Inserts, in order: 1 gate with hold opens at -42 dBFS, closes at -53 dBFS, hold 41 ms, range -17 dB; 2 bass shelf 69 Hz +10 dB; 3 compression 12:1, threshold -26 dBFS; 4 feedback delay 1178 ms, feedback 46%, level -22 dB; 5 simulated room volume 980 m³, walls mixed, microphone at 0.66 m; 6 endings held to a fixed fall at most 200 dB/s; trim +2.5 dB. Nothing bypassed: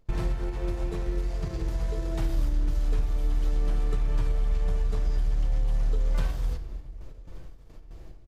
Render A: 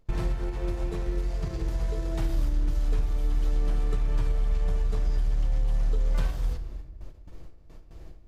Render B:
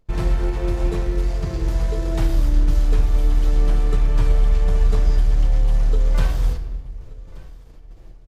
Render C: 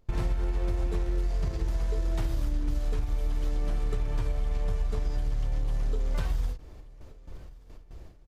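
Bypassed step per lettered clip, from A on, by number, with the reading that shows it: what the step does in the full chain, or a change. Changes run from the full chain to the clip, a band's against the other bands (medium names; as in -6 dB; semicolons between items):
4, momentary loudness spread change -11 LU; 3, mean gain reduction 7.5 dB; 5, momentary loudness spread change +3 LU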